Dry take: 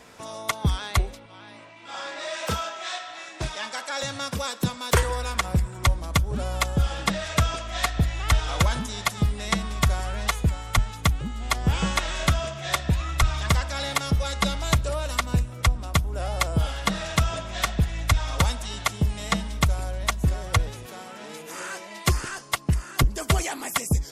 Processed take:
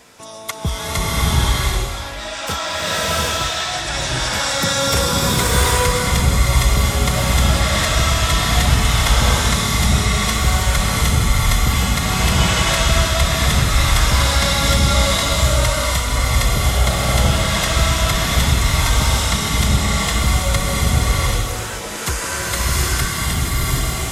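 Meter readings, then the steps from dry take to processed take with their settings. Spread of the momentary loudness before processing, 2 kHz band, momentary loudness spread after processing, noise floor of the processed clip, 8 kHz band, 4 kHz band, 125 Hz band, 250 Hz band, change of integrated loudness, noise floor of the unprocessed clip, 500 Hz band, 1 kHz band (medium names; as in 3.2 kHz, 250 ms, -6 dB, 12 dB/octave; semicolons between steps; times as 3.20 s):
9 LU, +9.0 dB, 6 LU, -27 dBFS, +12.5 dB, +11.5 dB, +8.0 dB, +7.5 dB, +9.0 dB, -44 dBFS, +9.0 dB, +8.0 dB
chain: fade out at the end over 2.16 s; treble shelf 3.6 kHz +7 dB; loudness maximiser +10.5 dB; buffer glitch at 15.29 s, samples 1024, times 7; swelling reverb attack 750 ms, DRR -9 dB; trim -10 dB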